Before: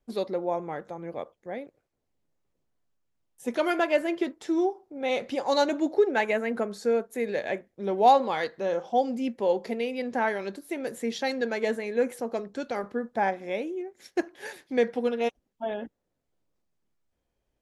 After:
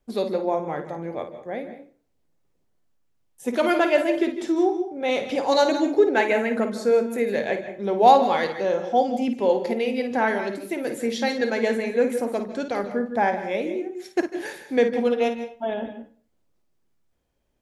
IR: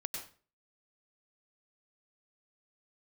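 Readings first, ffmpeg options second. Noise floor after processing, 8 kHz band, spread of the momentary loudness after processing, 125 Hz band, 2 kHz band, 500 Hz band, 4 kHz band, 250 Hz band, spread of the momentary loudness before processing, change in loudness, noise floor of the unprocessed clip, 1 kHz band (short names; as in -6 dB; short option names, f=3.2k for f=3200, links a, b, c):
-69 dBFS, +5.0 dB, 12 LU, n/a, +5.0 dB, +5.0 dB, +4.5 dB, +5.5 dB, 13 LU, +5.0 dB, -80 dBFS, +4.5 dB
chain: -filter_complex "[0:a]asplit=2[a][b];[b]equalizer=f=140:t=o:w=3:g=5[c];[1:a]atrim=start_sample=2205,adelay=54[d];[c][d]afir=irnorm=-1:irlink=0,volume=-7.5dB[e];[a][e]amix=inputs=2:normalize=0,volume=4dB"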